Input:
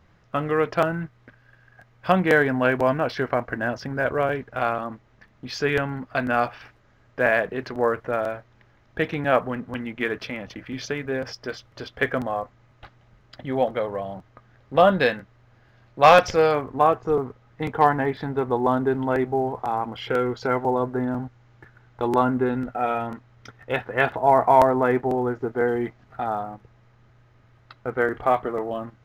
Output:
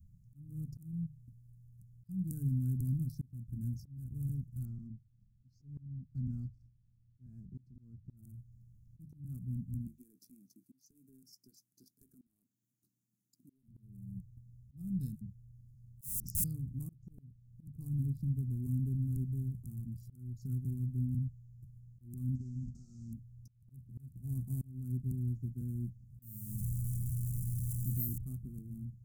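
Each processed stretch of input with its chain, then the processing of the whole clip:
4.65–8.17 s: companding laws mixed up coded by A + distance through air 210 m
9.87–13.63 s: high-pass 310 Hz 24 dB/octave + compression 12:1, threshold -29 dBFS
15.15–16.44 s: integer overflow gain 18 dB + phase dispersion lows, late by 64 ms, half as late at 740 Hz
22.35–23.13 s: CVSD coder 32 kbps + hum notches 60/120/180/240/300/360/420/480/540 Hz + compression 10:1, threshold -27 dBFS
26.22–28.18 s: jump at every zero crossing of -29 dBFS + peaking EQ 2.5 kHz +4 dB 0.58 oct + careless resampling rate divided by 3×, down none, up hold
whole clip: inverse Chebyshev band-stop 500–3300 Hz, stop band 60 dB; hum notches 50/100/150 Hz; slow attack 423 ms; trim +1.5 dB

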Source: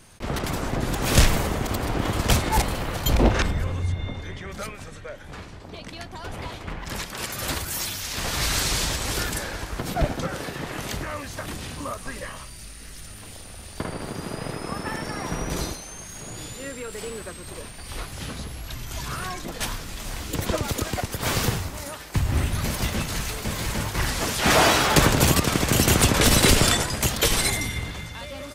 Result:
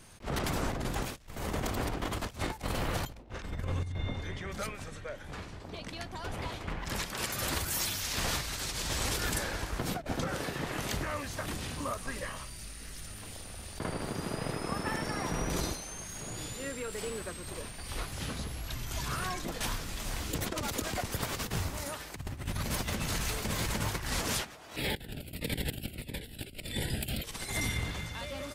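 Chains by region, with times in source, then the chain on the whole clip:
24.76–27.24 s: static phaser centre 2.7 kHz, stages 4 + Shepard-style phaser falling 1.6 Hz
whole clip: compressor with a negative ratio -27 dBFS, ratio -0.5; attacks held to a fixed rise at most 270 dB/s; trim -6.5 dB

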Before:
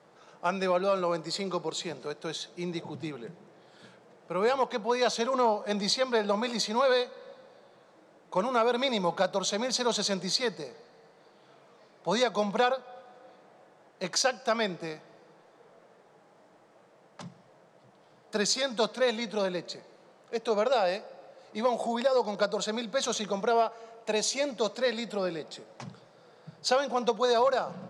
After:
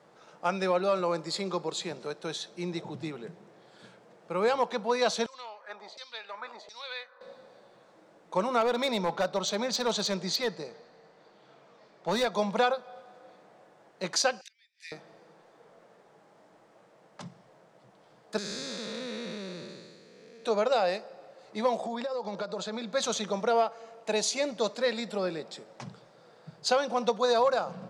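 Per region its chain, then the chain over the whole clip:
5.26–7.21 s: peaking EQ 180 Hz -12 dB 0.68 oct + LFO band-pass saw down 1.4 Hz 590–5700 Hz
8.61–12.32 s: low-pass 6.9 kHz + hard clipper -22 dBFS
14.41–14.92 s: steep high-pass 1.8 kHz 72 dB/octave + inverted gate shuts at -32 dBFS, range -30 dB
18.38–20.45 s: spectral blur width 489 ms + peaking EQ 760 Hz -11 dB 1 oct
21.77–22.93 s: compression 5:1, threshold -30 dBFS + distance through air 57 m
whole clip: none

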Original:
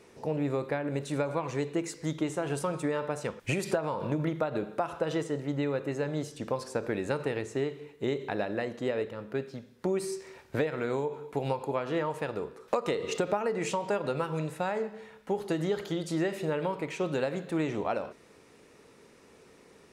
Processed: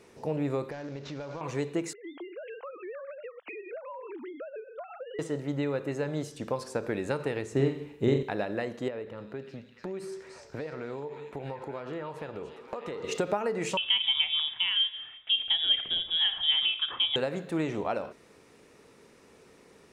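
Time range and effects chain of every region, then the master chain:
0.71–1.41 s: CVSD coder 32 kbps + compression 4:1, threshold -36 dBFS
1.93–5.19 s: formants replaced by sine waves + high-pass 320 Hz + compression 4:1, threshold -39 dBFS
7.52–8.23 s: bass shelf 310 Hz +9.5 dB + flutter echo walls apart 7.5 m, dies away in 0.4 s
8.88–13.04 s: compression 2.5:1, threshold -36 dBFS + treble shelf 4.8 kHz -11 dB + repeats whose band climbs or falls 295 ms, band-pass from 5.3 kHz, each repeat -0.7 oct, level -0.5 dB
13.77–17.16 s: peaking EQ 470 Hz +7 dB 0.55 oct + frequency inversion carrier 3.6 kHz
whole clip: none

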